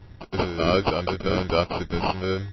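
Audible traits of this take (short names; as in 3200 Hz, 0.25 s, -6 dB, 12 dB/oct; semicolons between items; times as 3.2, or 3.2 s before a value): phasing stages 6, 1.4 Hz, lowest notch 800–1900 Hz; aliases and images of a low sample rate 1800 Hz, jitter 0%; MP3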